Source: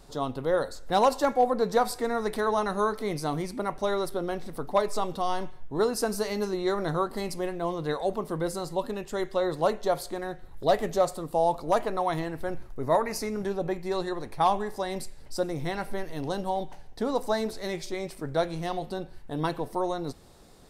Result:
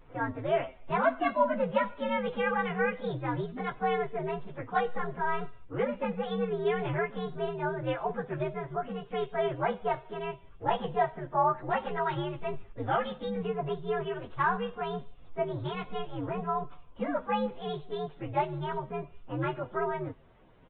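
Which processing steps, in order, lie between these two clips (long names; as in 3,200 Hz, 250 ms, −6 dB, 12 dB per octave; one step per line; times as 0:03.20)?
partials spread apart or drawn together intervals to 126%
downsampling to 8,000 Hz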